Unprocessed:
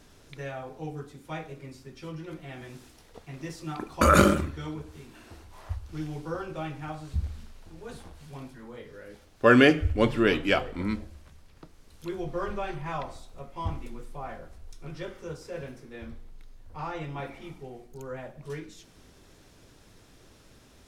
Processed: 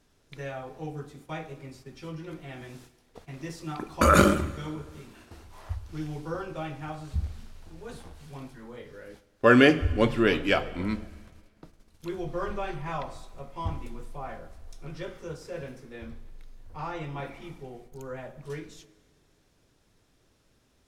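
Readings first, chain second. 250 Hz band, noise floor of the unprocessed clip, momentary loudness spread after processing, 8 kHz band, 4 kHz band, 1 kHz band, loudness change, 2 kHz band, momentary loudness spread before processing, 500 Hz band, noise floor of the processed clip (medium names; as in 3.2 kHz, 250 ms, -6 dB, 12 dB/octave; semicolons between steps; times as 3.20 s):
0.0 dB, -56 dBFS, 24 LU, 0.0 dB, 0.0 dB, 0.0 dB, 0.0 dB, 0.0 dB, 24 LU, 0.0 dB, -66 dBFS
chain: gate -50 dBFS, range -11 dB; plate-style reverb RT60 1.8 s, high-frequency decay 0.95×, DRR 17 dB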